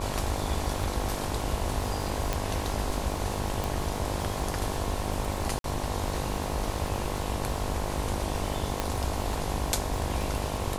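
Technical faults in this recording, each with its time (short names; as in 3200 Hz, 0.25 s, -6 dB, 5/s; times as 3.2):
buzz 50 Hz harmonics 22 -35 dBFS
crackle 120/s -36 dBFS
2.33 pop
3.64 pop
5.59–5.64 gap 52 ms
8.8 pop -12 dBFS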